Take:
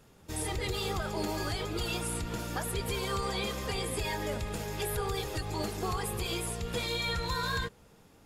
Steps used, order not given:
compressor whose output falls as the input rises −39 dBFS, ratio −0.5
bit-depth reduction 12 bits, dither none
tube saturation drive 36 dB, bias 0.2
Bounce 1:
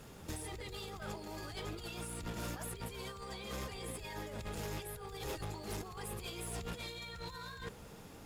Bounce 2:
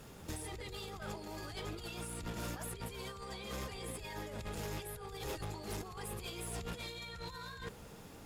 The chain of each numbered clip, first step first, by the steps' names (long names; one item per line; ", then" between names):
compressor whose output falls as the input rises, then tube saturation, then bit-depth reduction
bit-depth reduction, then compressor whose output falls as the input rises, then tube saturation